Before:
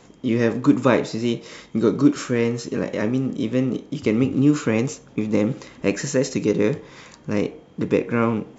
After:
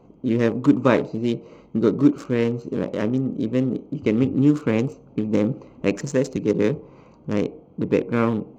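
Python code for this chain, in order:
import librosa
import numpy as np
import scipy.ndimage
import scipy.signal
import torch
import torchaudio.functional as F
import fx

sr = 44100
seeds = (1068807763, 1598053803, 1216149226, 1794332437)

y = fx.wiener(x, sr, points=25)
y = fx.band_widen(y, sr, depth_pct=40, at=(6.36, 6.77))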